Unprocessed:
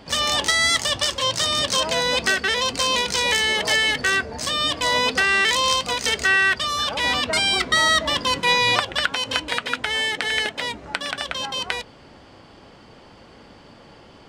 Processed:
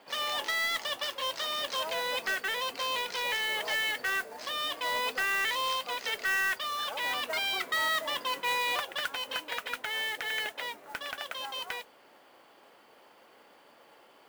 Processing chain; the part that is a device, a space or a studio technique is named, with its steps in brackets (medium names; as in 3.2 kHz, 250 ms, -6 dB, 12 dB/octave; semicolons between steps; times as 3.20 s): carbon microphone (band-pass 470–3500 Hz; saturation -14.5 dBFS, distortion -17 dB; modulation noise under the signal 14 dB); trim -8 dB